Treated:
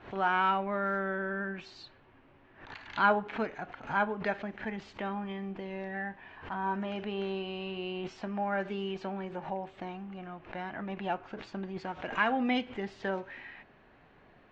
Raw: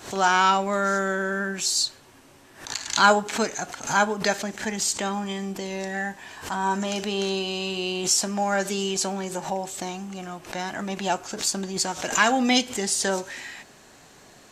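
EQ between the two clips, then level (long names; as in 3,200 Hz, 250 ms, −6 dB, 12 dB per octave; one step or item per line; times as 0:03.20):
low-pass filter 2,700 Hz 24 dB per octave
low-shelf EQ 64 Hz +9 dB
−8.0 dB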